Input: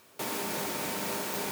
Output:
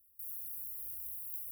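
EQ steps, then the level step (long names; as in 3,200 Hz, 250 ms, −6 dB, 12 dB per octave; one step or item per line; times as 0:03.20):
inverse Chebyshev band-stop filter 150–6,800 Hz, stop band 40 dB
Butterworth band-reject 4,600 Hz, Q 2.7
−2.0 dB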